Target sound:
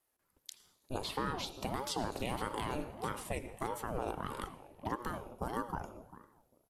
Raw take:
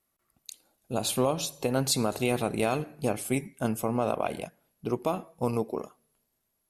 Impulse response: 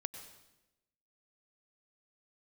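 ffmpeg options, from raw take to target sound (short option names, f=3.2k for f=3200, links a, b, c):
-filter_complex "[0:a]asettb=1/sr,asplit=3[a][b][c];[a]atrim=end=1.044[d];[b]atrim=start=1.04:end=1.61,asetpts=PTS-STARTPTS,afade=t=in:d=0.004:c=qsin,afade=t=out:st=0.566:d=0.004:c=qsin,highshelf=f=5.2k:t=q:w=1.5:g=-7[e];[c]atrim=start=1.606[f];[d][e]acrossfade=d=0.004:c1=hsin:c2=qsin[g];[g][f]acrossfade=d=0.004:c1=qsin:c2=hsin,acrossover=split=750|5200[h][i][j];[h]acompressor=threshold=-30dB:ratio=4[k];[i]acompressor=threshold=-36dB:ratio=4[l];[j]acompressor=threshold=-47dB:ratio=4[m];[k][l][m]amix=inputs=3:normalize=0,alimiter=limit=-22dB:level=0:latency=1:release=166,asplit=2[n][o];[o]adelay=397,lowpass=f=1.2k:p=1,volume=-15dB,asplit=2[p][q];[q]adelay=397,lowpass=f=1.2k:p=1,volume=0.17[r];[n][p][r]amix=inputs=3:normalize=0,asplit=2[s][t];[1:a]atrim=start_sample=2205,asetrate=52920,aresample=44100[u];[t][u]afir=irnorm=-1:irlink=0,volume=4dB[v];[s][v]amix=inputs=2:normalize=0,aeval=exprs='val(0)*sin(2*PI*430*n/s+430*0.7/1.6*sin(2*PI*1.6*n/s))':c=same,volume=-6.5dB"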